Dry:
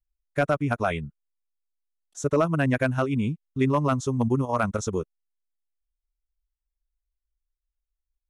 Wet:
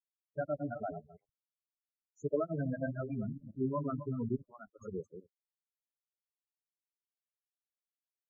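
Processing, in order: backward echo that repeats 130 ms, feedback 43%, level -6 dB; high-pass 67 Hz 6 dB/octave; 4.36–4.81 s: expander -15 dBFS; Chebyshev shaper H 2 -27 dB, 3 -31 dB, 4 -19 dB, 6 -34 dB, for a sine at -9 dBFS; crossover distortion -35.5 dBFS; 0.94–2.60 s: transient shaper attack +3 dB, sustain -10 dB; loudest bins only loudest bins 8; trim -9 dB

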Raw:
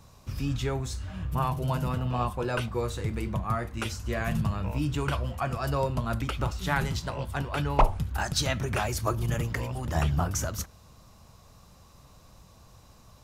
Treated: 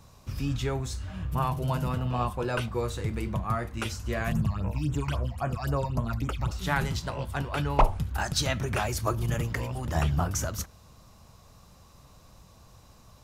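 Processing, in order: 4.32–6.51 s: phase shifter stages 8, 3.7 Hz, lowest notch 390–4700 Hz

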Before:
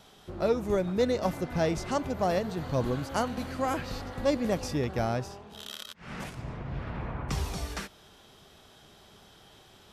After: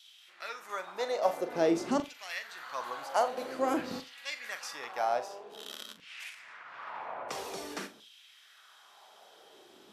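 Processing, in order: LFO high-pass saw down 0.5 Hz 220–3300 Hz; flutter echo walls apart 7.2 m, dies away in 0.23 s; trim -3 dB

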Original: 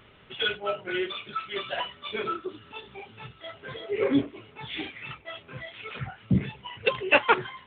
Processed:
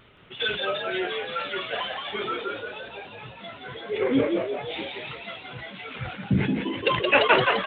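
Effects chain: wow and flutter 69 cents; frequency-shifting echo 172 ms, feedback 57%, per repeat +69 Hz, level -4 dB; decay stretcher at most 76 dB/s

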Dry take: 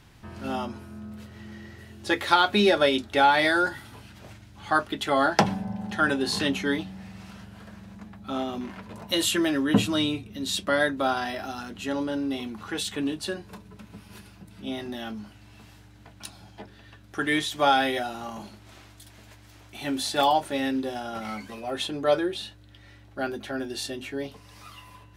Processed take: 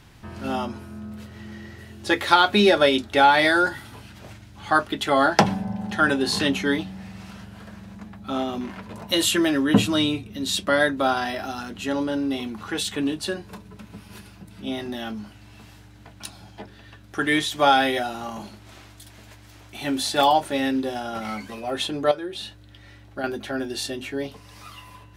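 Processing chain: 22.11–23.24 s: compression 12:1, threshold -30 dBFS, peak gain reduction 13.5 dB; trim +3.5 dB

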